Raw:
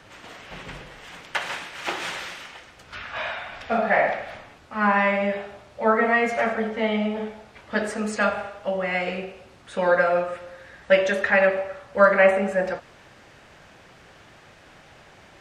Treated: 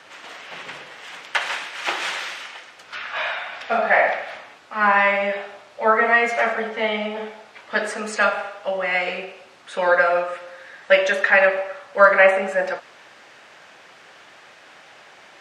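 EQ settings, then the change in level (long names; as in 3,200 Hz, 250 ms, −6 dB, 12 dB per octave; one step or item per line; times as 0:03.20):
meter weighting curve A
+4.0 dB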